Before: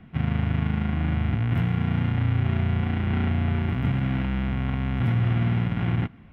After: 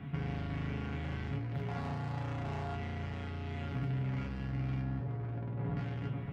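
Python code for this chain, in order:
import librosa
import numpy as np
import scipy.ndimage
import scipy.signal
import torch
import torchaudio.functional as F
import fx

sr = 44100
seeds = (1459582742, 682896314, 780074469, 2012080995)

y = fx.peak_eq(x, sr, hz=820.0, db=12.5, octaves=1.5, at=(1.67, 2.75))
y = fx.lowpass(y, sr, hz=1200.0, slope=12, at=(4.81, 5.77))
y = 10.0 ** (-27.5 / 20.0) * np.tanh(y / 10.0 ** (-27.5 / 20.0))
y = y + 10.0 ** (-13.5 / 20.0) * np.pad(y, (int(560 * sr / 1000.0), 0))[:len(y)]
y = fx.over_compress(y, sr, threshold_db=-35.0, ratio=-1.0)
y = scipy.signal.sosfilt(scipy.signal.butter(2, 56.0, 'highpass', fs=sr, output='sos'), y)
y = fx.low_shelf(y, sr, hz=96.0, db=5.5)
y = fx.comb_fb(y, sr, f0_hz=140.0, decay_s=0.23, harmonics='all', damping=0.0, mix_pct=90)
y = y * 10.0 ** (7.5 / 20.0)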